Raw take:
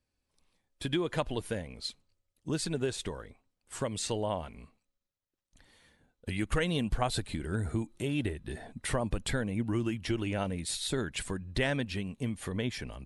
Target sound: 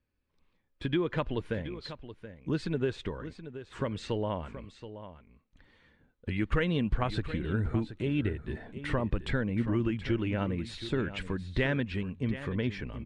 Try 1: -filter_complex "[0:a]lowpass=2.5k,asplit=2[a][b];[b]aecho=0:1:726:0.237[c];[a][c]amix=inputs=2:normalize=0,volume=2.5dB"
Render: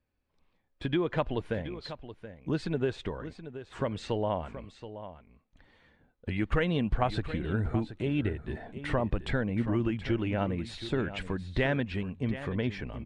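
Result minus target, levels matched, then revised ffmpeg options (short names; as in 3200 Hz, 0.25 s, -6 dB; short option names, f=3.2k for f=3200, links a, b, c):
1000 Hz band +2.5 dB
-filter_complex "[0:a]lowpass=2.5k,equalizer=f=720:w=2.6:g=-7.5,asplit=2[a][b];[b]aecho=0:1:726:0.237[c];[a][c]amix=inputs=2:normalize=0,volume=2.5dB"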